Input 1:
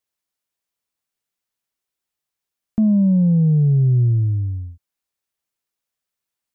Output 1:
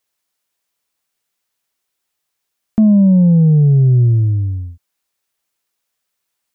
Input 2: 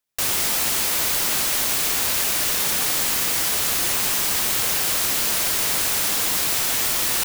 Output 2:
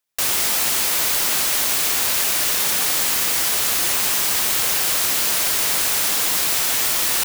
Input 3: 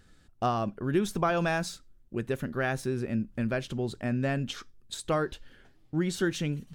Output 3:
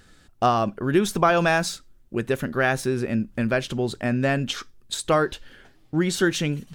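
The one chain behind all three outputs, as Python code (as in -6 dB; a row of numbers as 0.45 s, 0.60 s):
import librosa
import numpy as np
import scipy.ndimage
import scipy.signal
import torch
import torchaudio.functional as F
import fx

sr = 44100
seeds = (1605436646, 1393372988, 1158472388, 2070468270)

y = fx.low_shelf(x, sr, hz=300.0, db=-5.5)
y = y * 10.0 ** (-6 / 20.0) / np.max(np.abs(y))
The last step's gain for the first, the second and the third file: +9.5 dB, +2.0 dB, +9.0 dB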